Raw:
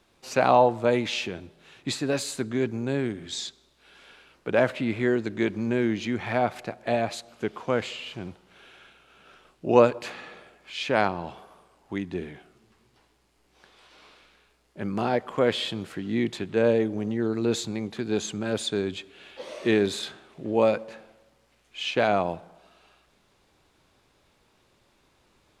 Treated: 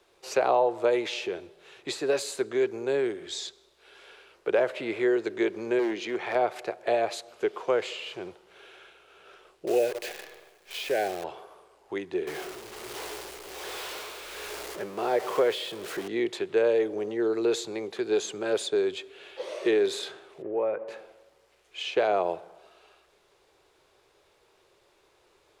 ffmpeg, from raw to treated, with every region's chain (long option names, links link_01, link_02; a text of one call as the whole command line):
ffmpeg -i in.wav -filter_complex "[0:a]asettb=1/sr,asplit=3[link_01][link_02][link_03];[link_01]atrim=end=5.794[link_04];[link_02]atrim=start=5.79:end=6.35,asetpts=PTS-STARTPTS,afade=type=in:duration=0.004:curve=qsin,afade=type=out:start_time=0.556:duration=0.004:curve=qsin,highpass=150,highshelf=frequency=10000:gain=-7,volume=21.5dB,asoftclip=hard,volume=-21.5dB[link_05];[link_03]atrim=start=6.346[link_06];[link_04][link_05]acrossfade=duration=0.004:curve1=hsin:curve2=qsin[link_07];[link_07][link_06]acrossfade=duration=0.004:curve1=qsin:curve2=hsin,asettb=1/sr,asplit=3[link_08][link_09][link_10];[link_08]atrim=end=9.674[link_11];[link_09]atrim=start=9.67:end=11.24,asetpts=PTS-STARTPTS,afade=type=in:duration=0.004:curve=qsin,afade=type=out:start_time=1.566:duration=0.004:curve=qsin,asuperstop=centerf=1100:order=20:qfactor=1.7,acompressor=threshold=-31dB:ratio=1.5:attack=3.2:release=140:knee=1:detection=peak,acrusher=bits=7:dc=4:mix=0:aa=0.000001[link_12];[link_10]atrim=start=11.236[link_13];[link_11][link_12]acrossfade=duration=0.004:curve1=hsin:curve2=qsin[link_14];[link_14][link_13]acrossfade=duration=0.004:curve1=qsin:curve2=hsin,asettb=1/sr,asplit=3[link_15][link_16][link_17];[link_15]atrim=end=12.274[link_18];[link_16]atrim=start=12.27:end=16.08,asetpts=PTS-STARTPTS,afade=type=in:duration=0.004:curve=qsin,afade=type=out:start_time=3.806:duration=0.004:curve=qsin,aeval=exprs='val(0)+0.5*0.0251*sgn(val(0))':channel_layout=same,tremolo=f=1.3:d=0.47[link_19];[link_17]atrim=start=16.076[link_20];[link_18][link_19]acrossfade=duration=0.004:curve1=hsin:curve2=qsin[link_21];[link_21][link_20]acrossfade=duration=0.004:curve1=qsin:curve2=hsin,asettb=1/sr,asplit=3[link_22][link_23][link_24];[link_22]atrim=end=20.424[link_25];[link_23]atrim=start=20.42:end=20.88,asetpts=PTS-STARTPTS,afade=type=in:duration=0.004:curve=qsin,afade=type=out:start_time=0.456:duration=0.004:curve=qsin,lowpass=frequency=2100:width=0.5412,lowpass=frequency=2100:width=1.3066,acompressor=threshold=-33dB:ratio=2:attack=3.2:release=140:knee=1:detection=peak[link_26];[link_24]atrim=start=20.876[link_27];[link_25][link_26]acrossfade=duration=0.004:curve1=hsin:curve2=qsin[link_28];[link_28][link_27]acrossfade=duration=0.004:curve1=qsin:curve2=hsin,lowshelf=frequency=310:width_type=q:width=3:gain=-7.5,acrossover=split=160|910[link_29][link_30][link_31];[link_29]acompressor=threshold=-59dB:ratio=4[link_32];[link_30]acompressor=threshold=-21dB:ratio=4[link_33];[link_31]acompressor=threshold=-32dB:ratio=4[link_34];[link_32][link_33][link_34]amix=inputs=3:normalize=0" out.wav